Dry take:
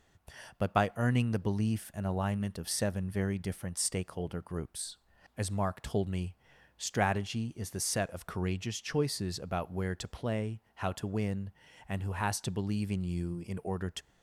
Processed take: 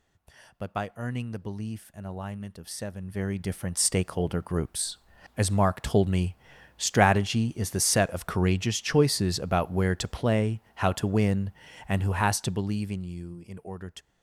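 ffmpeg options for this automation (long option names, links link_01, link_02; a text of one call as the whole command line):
ffmpeg -i in.wav -af "volume=9dB,afade=type=in:start_time=2.96:duration=1.05:silence=0.223872,afade=type=out:start_time=12.04:duration=1.12:silence=0.237137" out.wav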